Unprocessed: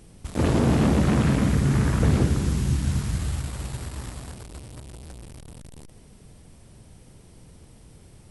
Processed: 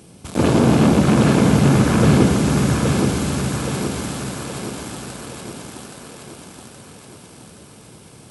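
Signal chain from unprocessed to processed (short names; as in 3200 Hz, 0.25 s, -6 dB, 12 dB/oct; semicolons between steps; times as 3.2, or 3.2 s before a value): HPF 130 Hz 12 dB/oct; notch 1900 Hz, Q 8.8; thinning echo 0.822 s, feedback 58%, high-pass 170 Hz, level -3 dB; gain +7.5 dB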